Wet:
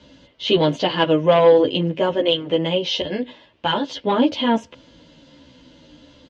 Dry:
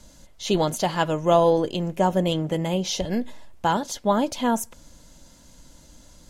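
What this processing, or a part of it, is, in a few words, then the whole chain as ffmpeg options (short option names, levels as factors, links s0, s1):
barber-pole flanger into a guitar amplifier: -filter_complex "[0:a]asettb=1/sr,asplit=3[s0][s1][s2];[s0]atrim=end=1.994[s3];[s1]atrim=start=1.99:end=3.91,asetpts=PTS-STARTPTS,afade=t=in:d=0.004:c=qsin,afade=t=out:st=1.916:d=0.004:c=qsin,lowshelf=f=440:g=-5[s4];[s2]atrim=start=3.906[s5];[s3][s4]acrossfade=d=0.004:c1=hsin:c2=qsin[s6];[s6][s5]acrossfade=d=0.004:c1=qsin:c2=hsin,asplit=2[s7][s8];[s8]adelay=11.4,afreqshift=-1.3[s9];[s7][s9]amix=inputs=2:normalize=1,asoftclip=type=tanh:threshold=0.178,highpass=100,equalizer=f=200:t=q:w=4:g=-6,equalizer=f=280:t=q:w=4:g=7,equalizer=f=500:t=q:w=4:g=4,equalizer=f=750:t=q:w=4:g=-6,equalizer=f=1300:t=q:w=4:g=-4,equalizer=f=3000:t=q:w=4:g=8,lowpass=f=4100:w=0.5412,lowpass=f=4100:w=1.3066,volume=2.66"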